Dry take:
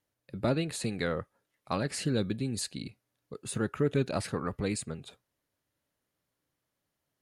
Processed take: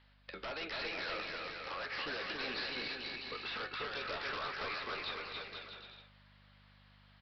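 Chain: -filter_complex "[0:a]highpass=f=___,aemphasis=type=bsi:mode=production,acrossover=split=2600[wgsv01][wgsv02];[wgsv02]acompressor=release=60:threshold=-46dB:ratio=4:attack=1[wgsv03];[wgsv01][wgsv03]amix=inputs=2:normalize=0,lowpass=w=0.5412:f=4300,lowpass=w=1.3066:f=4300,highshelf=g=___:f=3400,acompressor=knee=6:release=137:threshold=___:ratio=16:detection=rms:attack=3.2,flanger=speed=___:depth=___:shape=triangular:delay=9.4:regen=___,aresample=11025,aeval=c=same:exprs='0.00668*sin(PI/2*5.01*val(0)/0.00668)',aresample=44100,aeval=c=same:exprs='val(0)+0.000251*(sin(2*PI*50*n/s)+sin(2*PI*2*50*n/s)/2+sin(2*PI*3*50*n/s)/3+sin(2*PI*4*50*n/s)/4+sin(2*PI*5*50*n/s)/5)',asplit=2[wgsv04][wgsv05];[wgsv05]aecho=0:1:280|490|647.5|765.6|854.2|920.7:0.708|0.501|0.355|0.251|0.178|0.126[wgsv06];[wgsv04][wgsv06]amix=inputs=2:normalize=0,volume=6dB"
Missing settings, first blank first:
990, -6, -50dB, 0.62, 7.2, 67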